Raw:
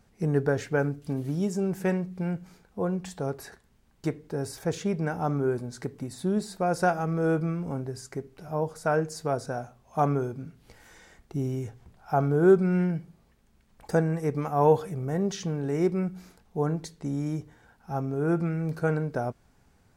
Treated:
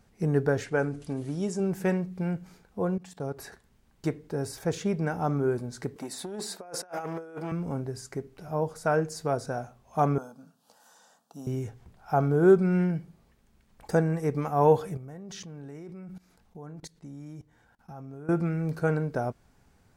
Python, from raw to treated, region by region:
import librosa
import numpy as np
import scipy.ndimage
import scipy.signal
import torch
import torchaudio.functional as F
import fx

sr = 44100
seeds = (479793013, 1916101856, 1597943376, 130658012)

y = fx.chain(x, sr, fx.resample_bad(factor=2, down='none', up='filtered'),
    fx.peak_eq(hz=140.0, db=-4.5, octaves=1.8),
    fx.sustainer(db_per_s=130.0), at=(0.64, 1.6))
y = fx.chain(y, sr, fx.highpass(hz=59.0, slope=12),
    fx.comb(ms=7.1, depth=0.33),
    fx.level_steps(step_db=16), at=(2.97, 3.38))
y = fx.chain(y, sr, fx.highpass(hz=350.0, slope=12),
    fx.over_compress(threshold_db=-34.0, ratio=-0.5),
    fx.transformer_sat(knee_hz=620.0), at=(5.96, 7.52))
y = fx.chain(y, sr, fx.highpass(hz=230.0, slope=24),
    fx.fixed_phaser(hz=880.0, stages=4), at=(10.18, 11.47))
y = fx.chain(y, sr, fx.peak_eq(hz=410.0, db=-4.0, octaves=0.32),
    fx.level_steps(step_db=21), at=(14.97, 18.29))